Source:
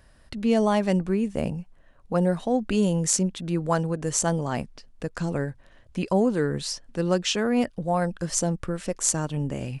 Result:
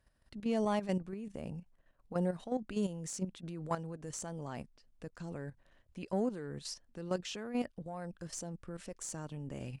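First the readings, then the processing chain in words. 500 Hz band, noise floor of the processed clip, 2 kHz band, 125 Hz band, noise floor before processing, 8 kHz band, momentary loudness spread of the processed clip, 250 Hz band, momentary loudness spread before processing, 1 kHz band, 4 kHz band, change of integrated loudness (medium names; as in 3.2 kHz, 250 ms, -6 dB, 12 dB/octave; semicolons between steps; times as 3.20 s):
-13.0 dB, -72 dBFS, -15.0 dB, -14.0 dB, -55 dBFS, -18.0 dB, 12 LU, -13.0 dB, 9 LU, -13.0 dB, -15.0 dB, -13.5 dB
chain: valve stage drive 9 dB, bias 0.25; level held to a coarse grid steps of 11 dB; trim -9 dB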